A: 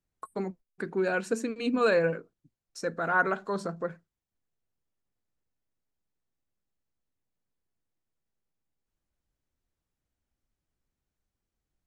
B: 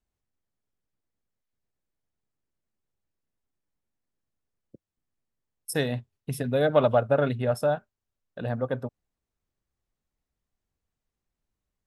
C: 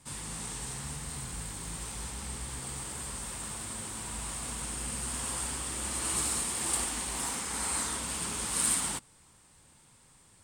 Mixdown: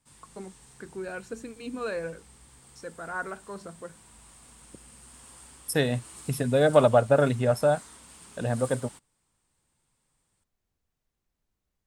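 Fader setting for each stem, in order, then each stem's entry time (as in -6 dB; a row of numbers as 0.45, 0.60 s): -8.5, +2.0, -15.5 dB; 0.00, 0.00, 0.00 s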